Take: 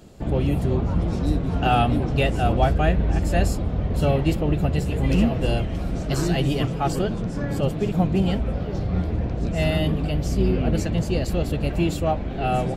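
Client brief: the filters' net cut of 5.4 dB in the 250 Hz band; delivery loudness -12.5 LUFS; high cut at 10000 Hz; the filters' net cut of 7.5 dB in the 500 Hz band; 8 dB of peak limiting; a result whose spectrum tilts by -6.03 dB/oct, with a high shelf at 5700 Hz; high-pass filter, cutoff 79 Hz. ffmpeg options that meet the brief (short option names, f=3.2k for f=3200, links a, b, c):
-af "highpass=79,lowpass=10k,equalizer=f=250:t=o:g=-6,equalizer=f=500:t=o:g=-8.5,highshelf=f=5.7k:g=-5,volume=16.5dB,alimiter=limit=-1.5dB:level=0:latency=1"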